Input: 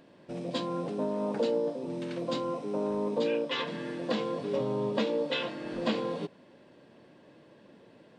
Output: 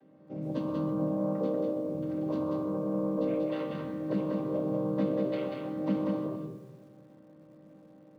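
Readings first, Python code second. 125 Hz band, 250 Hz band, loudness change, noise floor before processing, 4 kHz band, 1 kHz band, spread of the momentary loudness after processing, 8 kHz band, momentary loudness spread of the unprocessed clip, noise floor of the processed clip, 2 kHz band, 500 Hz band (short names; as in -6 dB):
+4.5 dB, +3.5 dB, 0.0 dB, -58 dBFS, under -15 dB, -4.5 dB, 6 LU, n/a, 7 LU, -56 dBFS, -11.0 dB, -1.5 dB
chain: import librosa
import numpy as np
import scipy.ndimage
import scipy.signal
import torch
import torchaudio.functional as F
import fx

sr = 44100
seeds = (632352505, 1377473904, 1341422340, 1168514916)

p1 = fx.chord_vocoder(x, sr, chord='minor triad', root=48)
p2 = fx.high_shelf(p1, sr, hz=2300.0, db=-8.5)
p3 = p2 + fx.echo_single(p2, sr, ms=189, db=-3.5, dry=0)
p4 = fx.room_shoebox(p3, sr, seeds[0], volume_m3=3600.0, walls='furnished', distance_m=2.2)
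p5 = fx.echo_crushed(p4, sr, ms=125, feedback_pct=35, bits=9, wet_db=-14.0)
y = p5 * 10.0 ** (-1.5 / 20.0)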